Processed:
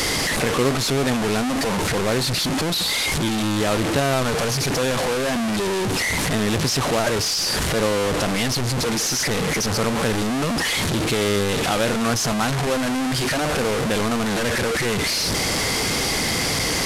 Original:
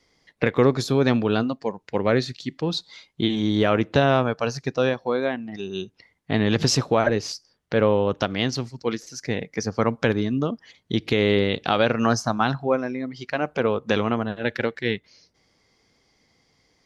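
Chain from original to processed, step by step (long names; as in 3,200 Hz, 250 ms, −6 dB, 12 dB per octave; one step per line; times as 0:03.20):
linear delta modulator 64 kbit/s, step −13.5 dBFS
level −2.5 dB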